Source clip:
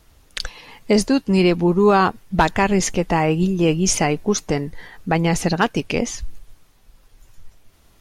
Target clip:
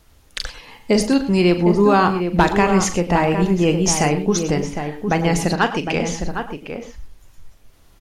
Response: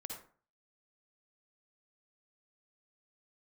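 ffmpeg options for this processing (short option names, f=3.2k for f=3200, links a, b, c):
-filter_complex "[0:a]asettb=1/sr,asplit=3[a][b][c];[a]atrim=end=5.554[d];[b]atrim=start=5.55:end=6.2,asetpts=PTS-STARTPTS,afade=t=in:d=0.004:c=qsin,afade=t=out:st=0.646:d=0.004:c=qsin,asplit=2[e][f];[f]highpass=f=720:p=1,volume=8dB,asoftclip=type=tanh:threshold=-5dB[g];[e][g]amix=inputs=2:normalize=0,lowpass=f=3.5k:p=1,volume=-6dB[h];[c]atrim=start=6.196[i];[d][h]acrossfade=d=0.004:c1=hsin:c2=qsin[j];[j][i]acrossfade=d=0.004:c1=qsin:c2=hsin,asplit=2[k][l];[l]adelay=758,volume=-7dB,highshelf=f=4k:g=-17.1[m];[k][m]amix=inputs=2:normalize=0,asplit=2[n][o];[1:a]atrim=start_sample=2205,afade=t=out:st=0.14:d=0.01,atrim=end_sample=6615,adelay=40[p];[o][p]afir=irnorm=-1:irlink=0,volume=-5.5dB[q];[n][q]amix=inputs=2:normalize=0"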